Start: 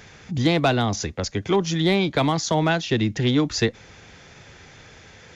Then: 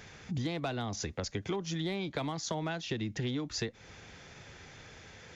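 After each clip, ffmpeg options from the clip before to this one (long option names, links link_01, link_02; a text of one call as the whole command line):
ffmpeg -i in.wav -af "acompressor=threshold=-27dB:ratio=6,volume=-5dB" out.wav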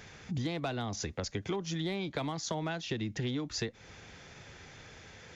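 ffmpeg -i in.wav -af anull out.wav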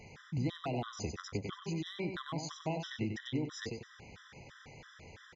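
ffmpeg -i in.wav -af "highshelf=frequency=5200:gain=-8,aecho=1:1:95|190|285|380:0.447|0.165|0.0612|0.0226,afftfilt=real='re*gt(sin(2*PI*3*pts/sr)*(1-2*mod(floor(b*sr/1024/1000),2)),0)':imag='im*gt(sin(2*PI*3*pts/sr)*(1-2*mod(floor(b*sr/1024/1000),2)),0)':win_size=1024:overlap=0.75" out.wav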